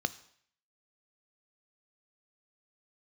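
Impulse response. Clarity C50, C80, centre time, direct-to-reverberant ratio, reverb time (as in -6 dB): 18.0 dB, 20.5 dB, 3 ms, 13.5 dB, 0.60 s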